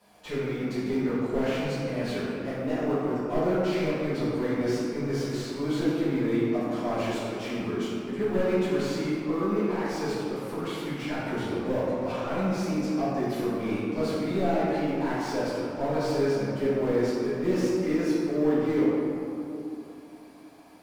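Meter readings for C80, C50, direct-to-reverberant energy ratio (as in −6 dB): −1.0 dB, −3.5 dB, −13.5 dB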